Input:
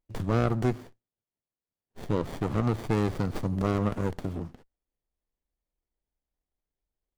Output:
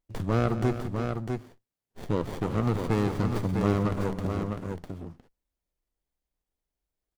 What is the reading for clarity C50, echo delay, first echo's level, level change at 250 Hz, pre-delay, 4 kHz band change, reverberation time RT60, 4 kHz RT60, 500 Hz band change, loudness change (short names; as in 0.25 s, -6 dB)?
none, 0.175 s, -13.5 dB, +1.5 dB, none, +1.5 dB, none, none, +1.5 dB, 0.0 dB